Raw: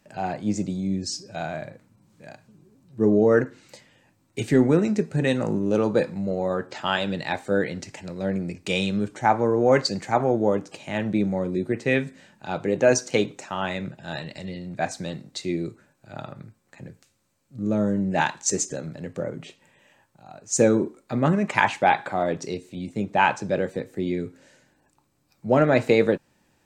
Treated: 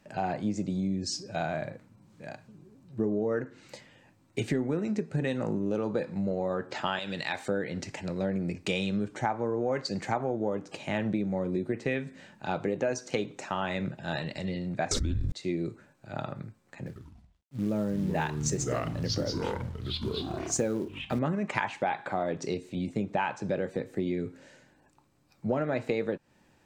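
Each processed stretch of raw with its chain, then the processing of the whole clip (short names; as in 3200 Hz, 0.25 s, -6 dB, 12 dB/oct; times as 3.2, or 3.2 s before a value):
6.99–7.48 tilt shelf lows -6 dB, about 1200 Hz + compressor 1.5:1, threshold -34 dBFS
14.91–15.32 resonant low shelf 660 Hz +11 dB, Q 1.5 + frequency shift -250 Hz + fast leveller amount 100%
16.86–21.19 expander -49 dBFS + companded quantiser 6-bit + echoes that change speed 96 ms, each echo -5 st, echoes 3, each echo -6 dB
whole clip: high shelf 6300 Hz -8 dB; compressor 6:1, threshold -28 dBFS; gain +1.5 dB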